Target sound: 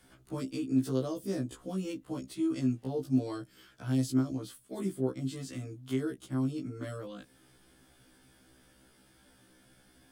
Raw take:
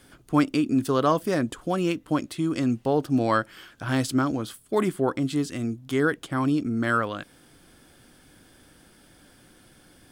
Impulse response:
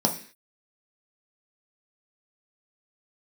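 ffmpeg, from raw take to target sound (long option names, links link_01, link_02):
-filter_complex "[0:a]acrossover=split=180|480|3800[link_01][link_02][link_03][link_04];[link_03]acompressor=threshold=-41dB:ratio=8[link_05];[link_01][link_02][link_05][link_04]amix=inputs=4:normalize=0,afftfilt=real='re*1.73*eq(mod(b,3),0)':imag='im*1.73*eq(mod(b,3),0)':win_size=2048:overlap=0.75,volume=-5dB"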